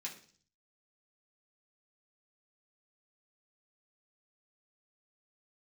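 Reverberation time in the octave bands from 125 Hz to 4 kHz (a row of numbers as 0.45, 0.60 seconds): 0.85, 0.65, 0.50, 0.45, 0.45, 0.60 seconds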